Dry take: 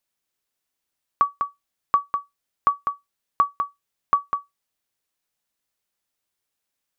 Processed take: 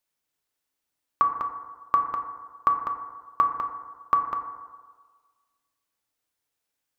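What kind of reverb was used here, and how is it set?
feedback delay network reverb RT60 1.5 s, low-frequency decay 0.85×, high-frequency decay 0.25×, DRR 3.5 dB
level −2 dB

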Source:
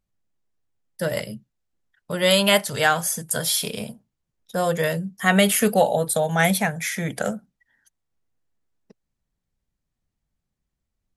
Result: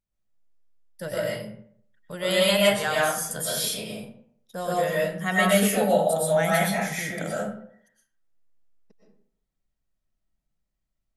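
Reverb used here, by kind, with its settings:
comb and all-pass reverb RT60 0.62 s, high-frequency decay 0.6×, pre-delay 80 ms, DRR −6 dB
level −9.5 dB

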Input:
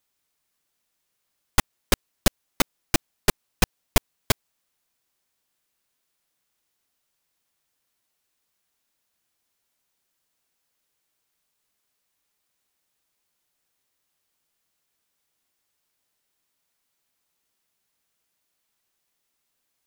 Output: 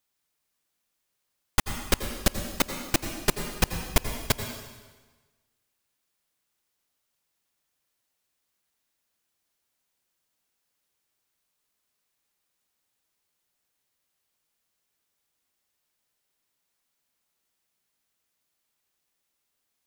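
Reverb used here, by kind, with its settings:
dense smooth reverb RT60 1.3 s, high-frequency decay 0.95×, pre-delay 75 ms, DRR 6.5 dB
level −3 dB

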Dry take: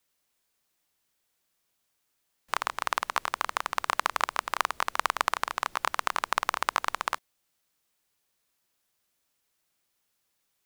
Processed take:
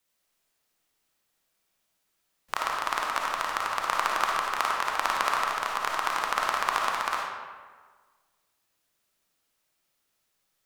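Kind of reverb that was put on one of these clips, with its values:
comb and all-pass reverb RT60 1.5 s, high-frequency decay 0.65×, pre-delay 15 ms, DRR −2 dB
level −2 dB

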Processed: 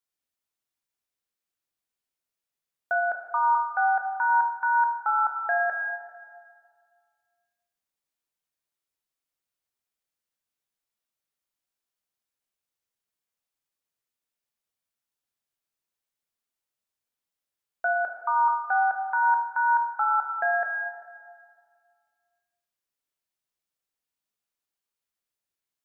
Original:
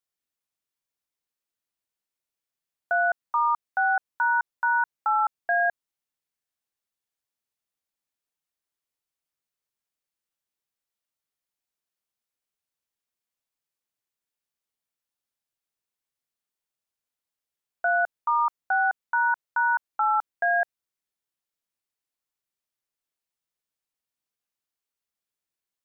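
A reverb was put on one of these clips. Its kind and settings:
dense smooth reverb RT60 1.9 s, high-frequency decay 0.8×, DRR 3.5 dB
level −1.5 dB

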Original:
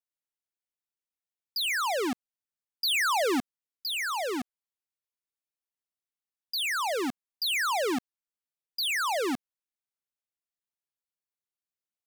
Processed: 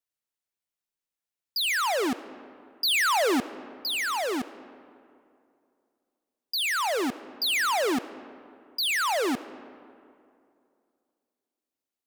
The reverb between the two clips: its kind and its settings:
comb and all-pass reverb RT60 2.5 s, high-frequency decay 0.55×, pre-delay 30 ms, DRR 15.5 dB
level +2.5 dB

